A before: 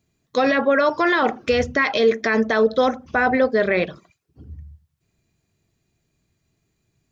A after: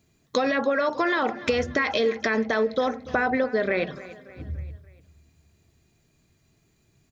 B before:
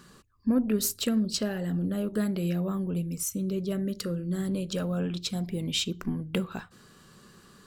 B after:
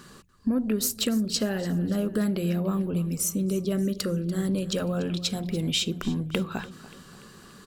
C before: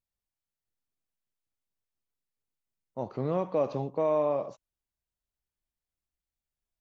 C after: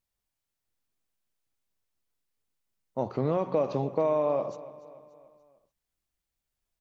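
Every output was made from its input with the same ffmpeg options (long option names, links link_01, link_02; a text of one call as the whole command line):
ffmpeg -i in.wav -af "acompressor=threshold=-28dB:ratio=4,bandreject=frequency=60:width_type=h:width=6,bandreject=frequency=120:width_type=h:width=6,bandreject=frequency=180:width_type=h:width=6,aecho=1:1:290|580|870|1160:0.133|0.0667|0.0333|0.0167,volume=5.5dB" out.wav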